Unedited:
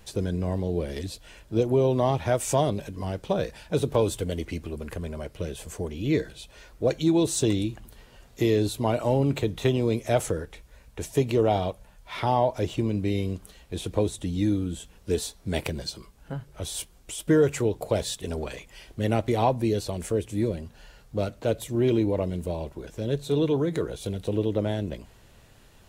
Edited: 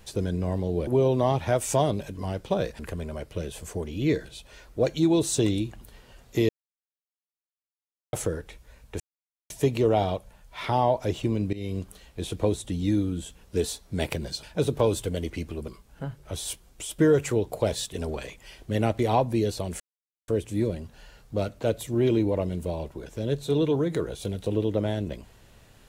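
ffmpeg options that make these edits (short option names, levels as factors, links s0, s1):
-filter_complex "[0:a]asplit=10[s0][s1][s2][s3][s4][s5][s6][s7][s8][s9];[s0]atrim=end=0.872[s10];[s1]atrim=start=1.658:end=3.582[s11];[s2]atrim=start=4.828:end=8.53,asetpts=PTS-STARTPTS,afade=t=out:st=3.698:d=0.004:c=hsin[s12];[s3]atrim=start=8.53:end=10.17,asetpts=PTS-STARTPTS,volume=0[s13];[s4]atrim=start=10.17:end=11.04,asetpts=PTS-STARTPTS,afade=t=in:d=0.004:c=hsin,afade=t=out:st=0.866:d=0.004:c=hsin,apad=pad_dur=0.5[s14];[s5]atrim=start=11.04:end=13.07,asetpts=PTS-STARTPTS,afade=t=in:d=0.004:c=hsin,afade=t=out:st=2.026:d=0.004:c=hsin:silence=0.141254[s15];[s6]atrim=start=13.07:end=15.972,asetpts=PTS-STARTPTS,afade=t=in:d=0.26:silence=0.141254[s16];[s7]atrim=start=3.578:end=4.832[s17];[s8]atrim=start=15.968:end=20.09,asetpts=PTS-STARTPTS,afade=t=out:st=4.118:d=0.004:c=hsin,apad=pad_dur=0.48[s18];[s9]atrim=start=20.09,asetpts=PTS-STARTPTS,afade=t=in:d=0.004:c=hsin[s19];[s10][s11]acrossfade=d=0.004:c1=hsin:c2=hsin[s20];[s12][s13][s14][s15][s16]concat=n=5:v=0:a=1[s21];[s20][s21]acrossfade=d=0.004:c1=hsin:c2=hsin[s22];[s22][s17]acrossfade=d=0.004:c1=hsin:c2=hsin[s23];[s18][s19]concat=n=2:v=0:a=1[s24];[s23][s24]acrossfade=d=0.004:c1=hsin:c2=hsin"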